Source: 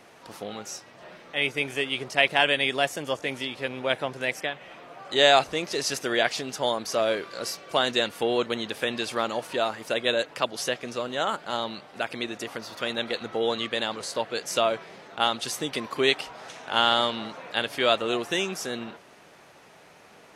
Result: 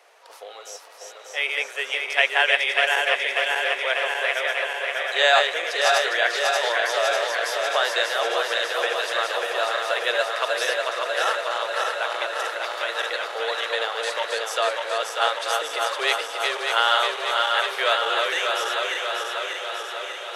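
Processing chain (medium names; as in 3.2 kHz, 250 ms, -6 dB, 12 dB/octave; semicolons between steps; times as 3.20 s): backward echo that repeats 296 ms, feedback 83%, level -3.5 dB; dynamic bell 1.6 kHz, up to +7 dB, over -39 dBFS, Q 1.4; steep high-pass 450 Hz 36 dB/octave; on a send: echo that smears into a reverb 642 ms, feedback 78%, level -15 dB; on the sum: trim -2 dB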